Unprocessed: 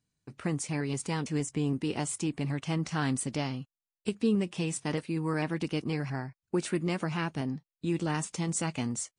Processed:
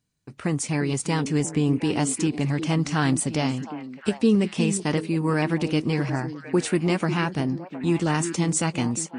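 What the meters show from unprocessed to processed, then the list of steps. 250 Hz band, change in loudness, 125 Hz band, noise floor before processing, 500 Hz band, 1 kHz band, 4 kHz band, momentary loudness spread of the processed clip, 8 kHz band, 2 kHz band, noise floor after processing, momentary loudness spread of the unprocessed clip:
+8.0 dB, +8.0 dB, +7.5 dB, under -85 dBFS, +8.0 dB, +8.0 dB, +7.5 dB, 5 LU, +7.5 dB, +7.5 dB, -46 dBFS, 6 LU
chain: level rider gain up to 3.5 dB; repeats whose band climbs or falls 357 ms, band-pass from 270 Hz, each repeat 1.4 oct, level -6.5 dB; trim +4 dB

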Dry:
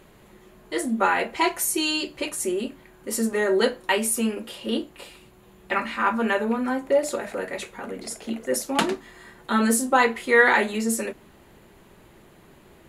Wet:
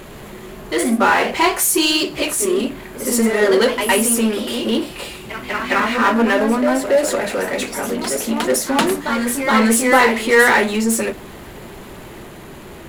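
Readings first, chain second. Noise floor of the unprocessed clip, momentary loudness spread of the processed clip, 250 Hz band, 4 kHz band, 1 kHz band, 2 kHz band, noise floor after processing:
-53 dBFS, 22 LU, +8.0 dB, +8.5 dB, +7.0 dB, +6.5 dB, -36 dBFS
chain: de-hum 88.34 Hz, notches 2; power-law waveshaper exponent 0.7; ever faster or slower copies 107 ms, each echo +1 st, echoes 2, each echo -6 dB; trim +2 dB

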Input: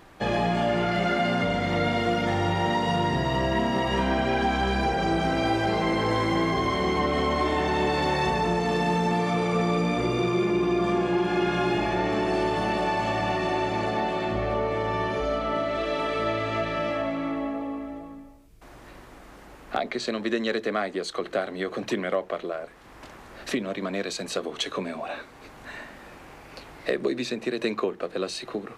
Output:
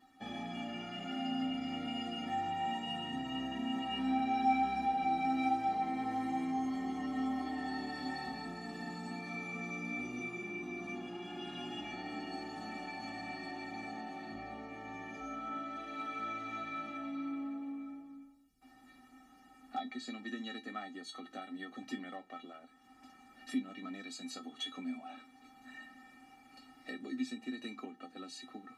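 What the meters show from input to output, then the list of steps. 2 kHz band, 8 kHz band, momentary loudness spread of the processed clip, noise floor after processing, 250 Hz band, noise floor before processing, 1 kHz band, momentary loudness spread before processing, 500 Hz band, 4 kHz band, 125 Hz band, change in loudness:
-14.0 dB, -14.0 dB, 15 LU, -62 dBFS, -11.0 dB, -48 dBFS, -10.0 dB, 10 LU, -24.0 dB, -11.5 dB, -22.0 dB, -13.0 dB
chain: feedback comb 260 Hz, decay 0.15 s, harmonics odd, mix 100%

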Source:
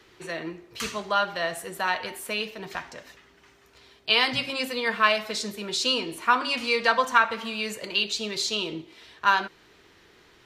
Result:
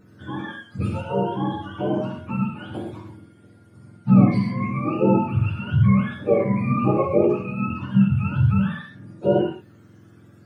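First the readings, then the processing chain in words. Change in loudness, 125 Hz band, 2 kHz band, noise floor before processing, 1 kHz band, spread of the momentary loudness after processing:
+4.0 dB, +26.5 dB, -10.5 dB, -57 dBFS, -3.5 dB, 16 LU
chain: spectrum inverted on a logarithmic axis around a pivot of 750 Hz; gated-style reverb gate 150 ms flat, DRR 0 dB

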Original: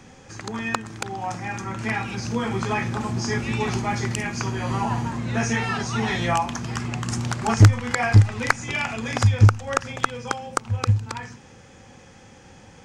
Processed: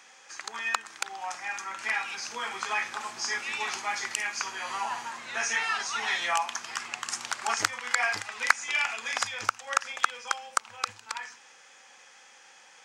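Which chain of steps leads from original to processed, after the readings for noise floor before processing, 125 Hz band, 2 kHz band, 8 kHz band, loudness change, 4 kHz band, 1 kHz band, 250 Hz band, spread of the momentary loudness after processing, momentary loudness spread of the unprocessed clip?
-48 dBFS, -40.0 dB, -0.5 dB, 0.0 dB, -7.0 dB, 0.0 dB, -4.0 dB, -26.0 dB, 9 LU, 13 LU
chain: high-pass 1.1 kHz 12 dB/octave

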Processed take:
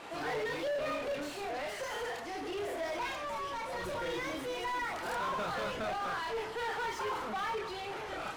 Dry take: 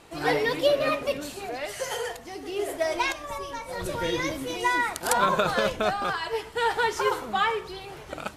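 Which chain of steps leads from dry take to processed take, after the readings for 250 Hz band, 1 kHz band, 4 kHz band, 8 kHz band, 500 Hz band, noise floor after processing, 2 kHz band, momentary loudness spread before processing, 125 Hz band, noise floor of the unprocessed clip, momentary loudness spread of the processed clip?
-9.0 dB, -8.5 dB, -10.0 dB, -13.0 dB, -9.5 dB, -42 dBFS, -9.5 dB, 11 LU, -10.5 dB, -43 dBFS, 4 LU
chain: chorus voices 2, 0.4 Hz, delay 30 ms, depth 2.8 ms; hard clipper -26 dBFS, distortion -10 dB; overdrive pedal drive 26 dB, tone 1.9 kHz, clips at -26 dBFS; trim -5 dB

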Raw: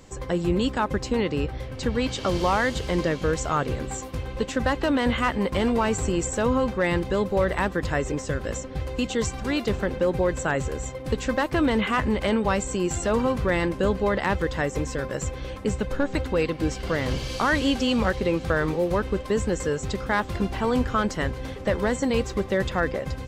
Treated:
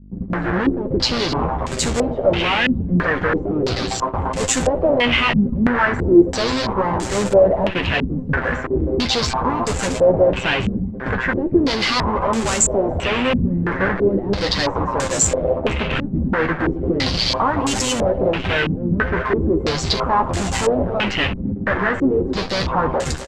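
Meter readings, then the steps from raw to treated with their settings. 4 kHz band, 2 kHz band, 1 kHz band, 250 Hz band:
+11.0 dB, +7.0 dB, +6.5 dB, +5.5 dB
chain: reverb removal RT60 0.83 s; level rider gain up to 13 dB; AM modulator 120 Hz, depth 85%; Chebyshev shaper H 8 -21 dB, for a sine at -1.5 dBFS; fuzz box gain 37 dB, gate -36 dBFS; flange 0.28 Hz, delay 9.8 ms, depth 3.2 ms, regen +34%; mains buzz 50 Hz, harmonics 26, -42 dBFS -7 dB/octave; on a send: multi-tap echo 63/255 ms -17.5/-13.5 dB; on the sum: step-sequenced low-pass 3 Hz 220–7600 Hz; trim -2 dB

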